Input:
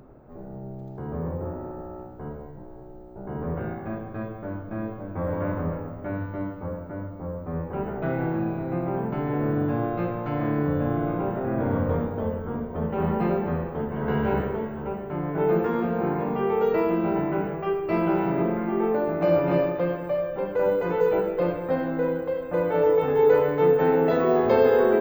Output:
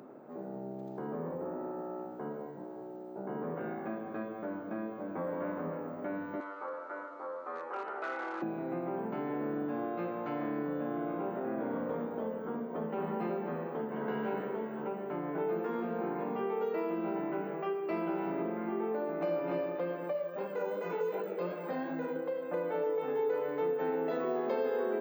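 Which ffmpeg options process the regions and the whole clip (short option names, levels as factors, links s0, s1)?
-filter_complex "[0:a]asettb=1/sr,asplit=3[s0][s1][s2];[s0]atrim=end=6.404[s3];[s1]atrim=start=6.4:end=8.42,asetpts=PTS-STARTPTS,afade=t=in:d=0.004:c=qsin,afade=t=out:st=2.016:d=0.004:c=qsin,asoftclip=type=hard:threshold=0.0794,highpass=f=430:w=0.5412,highpass=f=430:w=1.3066,equalizer=f=440:t=q:w=4:g=-6,equalizer=f=650:t=q:w=4:g=-6,equalizer=f=1300:t=q:w=4:g=9,equalizer=f=4300:t=q:w=4:g=4,equalizer=f=6600:t=q:w=4:g=4,lowpass=f=7500:w=0.5412,lowpass=f=7500:w=1.3066[s4];[s2]atrim=start=8.416[s5];[s3][s4]acrossfade=d=0.004:c1=hsin:c2=qsin[s6];[s6][s5]acrossfade=d=0.004:c1=qsin:c2=hsin,asettb=1/sr,asplit=3[s7][s8][s9];[s7]atrim=end=20.134[s10];[s8]atrim=start=20.13:end=22.16,asetpts=PTS-STARTPTS,afade=t=in:d=0.004:c=qsin,afade=t=out:st=2.026:d=0.004:c=qsin,highshelf=f=4500:g=8,flanger=delay=18.5:depth=4.5:speed=2.7,aecho=1:1:4.9:0.43,atrim=end_sample=89523[s11];[s9]atrim=start=22.156[s12];[s10][s11]acrossfade=d=0.004:c1=hsin:c2=qsin[s13];[s13][s12]acrossfade=d=0.004:c1=qsin:c2=hsin,highpass=f=200:w=0.5412,highpass=f=200:w=1.3066,acompressor=threshold=0.0126:ratio=2.5,volume=1.12"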